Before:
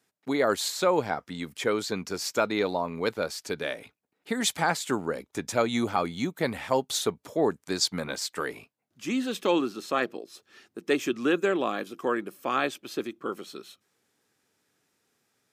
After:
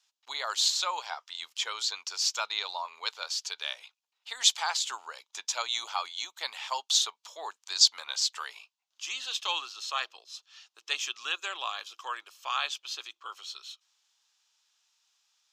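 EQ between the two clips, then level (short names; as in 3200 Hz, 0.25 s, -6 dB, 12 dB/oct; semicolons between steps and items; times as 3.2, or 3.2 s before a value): ladder high-pass 830 Hz, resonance 50%; band shelf 4400 Hz +15.5 dB; 0.0 dB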